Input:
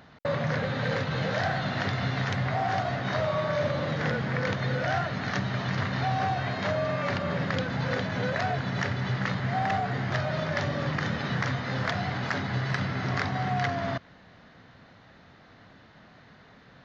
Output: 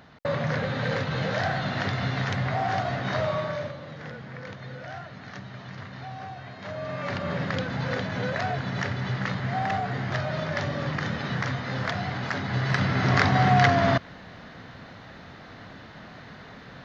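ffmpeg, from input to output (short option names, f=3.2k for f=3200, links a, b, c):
-af "volume=21dB,afade=t=out:st=3.29:d=0.48:silence=0.251189,afade=t=in:st=6.59:d=0.71:silence=0.281838,afade=t=in:st=12.4:d=0.98:silence=0.354813"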